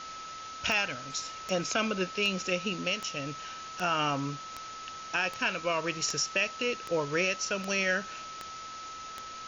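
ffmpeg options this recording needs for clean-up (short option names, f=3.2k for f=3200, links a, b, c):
-af "adeclick=t=4,bandreject=f=1.3k:w=30,afwtdn=0.0071"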